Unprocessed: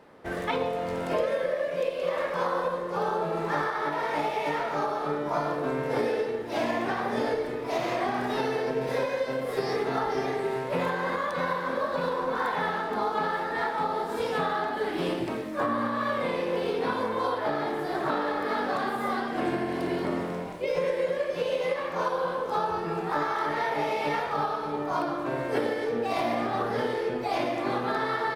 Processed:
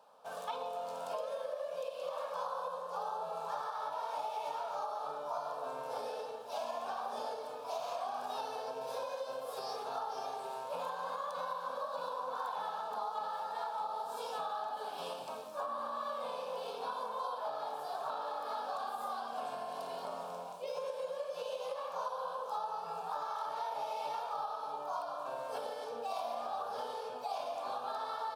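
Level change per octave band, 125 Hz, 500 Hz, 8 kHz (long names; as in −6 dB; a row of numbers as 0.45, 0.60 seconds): −26.5, −12.5, −5.5 decibels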